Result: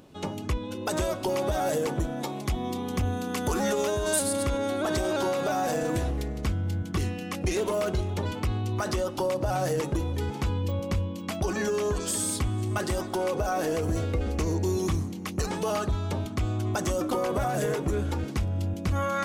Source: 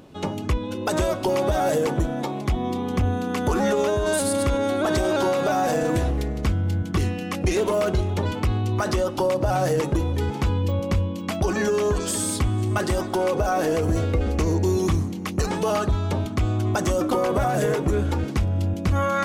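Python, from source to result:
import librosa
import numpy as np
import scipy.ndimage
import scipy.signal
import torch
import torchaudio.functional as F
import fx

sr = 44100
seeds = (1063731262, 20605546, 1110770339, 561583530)

y = fx.high_shelf(x, sr, hz=4200.0, db=fx.steps((0.0, 4.5), (2.2, 10.5), (4.18, 4.0)))
y = F.gain(torch.from_numpy(y), -5.5).numpy()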